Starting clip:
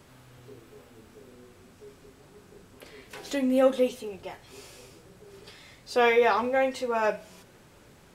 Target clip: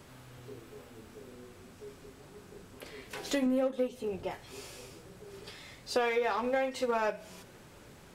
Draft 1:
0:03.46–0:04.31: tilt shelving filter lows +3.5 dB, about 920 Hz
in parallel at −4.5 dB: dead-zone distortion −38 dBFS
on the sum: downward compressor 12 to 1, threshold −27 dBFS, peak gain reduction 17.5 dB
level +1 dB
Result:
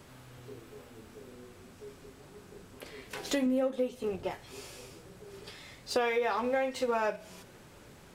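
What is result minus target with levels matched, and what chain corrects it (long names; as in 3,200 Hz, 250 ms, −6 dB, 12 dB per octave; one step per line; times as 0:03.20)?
dead-zone distortion: distortion −8 dB
0:03.46–0:04.31: tilt shelving filter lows +3.5 dB, about 920 Hz
in parallel at −4.5 dB: dead-zone distortion −28 dBFS
on the sum: downward compressor 12 to 1, threshold −27 dBFS, peak gain reduction 17.5 dB
level +1 dB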